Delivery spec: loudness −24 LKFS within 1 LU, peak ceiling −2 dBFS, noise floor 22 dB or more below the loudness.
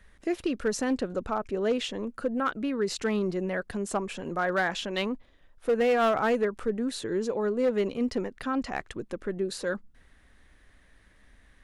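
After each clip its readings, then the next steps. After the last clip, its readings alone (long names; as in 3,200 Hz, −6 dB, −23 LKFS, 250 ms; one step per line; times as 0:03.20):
share of clipped samples 0.6%; peaks flattened at −19.0 dBFS; integrated loudness −29.5 LKFS; sample peak −19.0 dBFS; target loudness −24.0 LKFS
→ clipped peaks rebuilt −19 dBFS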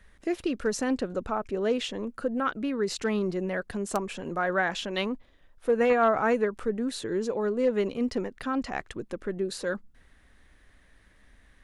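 share of clipped samples 0.0%; integrated loudness −29.0 LKFS; sample peak −10.0 dBFS; target loudness −24.0 LKFS
→ level +5 dB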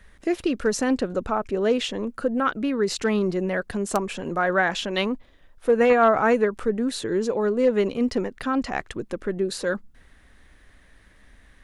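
integrated loudness −24.0 LKFS; sample peak −5.0 dBFS; background noise floor −55 dBFS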